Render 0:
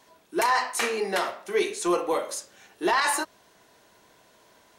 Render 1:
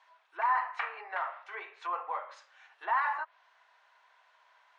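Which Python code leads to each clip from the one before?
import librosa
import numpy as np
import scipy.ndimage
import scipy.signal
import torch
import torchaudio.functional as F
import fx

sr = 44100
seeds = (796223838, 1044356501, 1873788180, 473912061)

y = scipy.signal.sosfilt(scipy.signal.butter(2, 2400.0, 'lowpass', fs=sr, output='sos'), x)
y = fx.env_lowpass_down(y, sr, base_hz=1500.0, full_db=-24.5)
y = scipy.signal.sosfilt(scipy.signal.butter(4, 870.0, 'highpass', fs=sr, output='sos'), y)
y = F.gain(torch.from_numpy(y), -1.5).numpy()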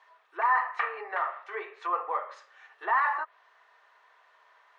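y = fx.low_shelf(x, sr, hz=470.0, db=8.0)
y = fx.small_body(y, sr, hz=(420.0, 1200.0, 1800.0), ring_ms=20, db=8)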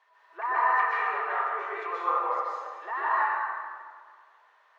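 y = fx.rider(x, sr, range_db=3, speed_s=2.0)
y = fx.rev_plate(y, sr, seeds[0], rt60_s=1.8, hf_ratio=0.7, predelay_ms=115, drr_db=-8.5)
y = F.gain(torch.from_numpy(y), -7.5).numpy()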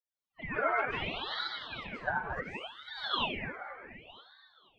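y = fx.bin_expand(x, sr, power=2.0)
y = fx.echo_alternate(y, sr, ms=240, hz=900.0, feedback_pct=56, wet_db=-6)
y = fx.ring_lfo(y, sr, carrier_hz=1500.0, swing_pct=80, hz=0.68)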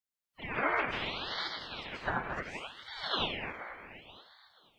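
y = fx.spec_clip(x, sr, under_db=19)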